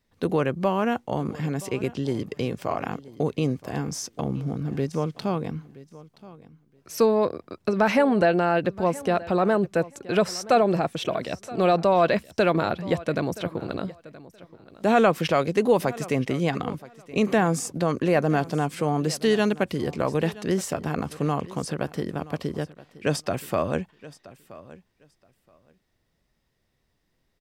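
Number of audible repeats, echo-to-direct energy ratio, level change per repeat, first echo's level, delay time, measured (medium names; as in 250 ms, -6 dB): 2, -19.0 dB, -15.5 dB, -19.0 dB, 974 ms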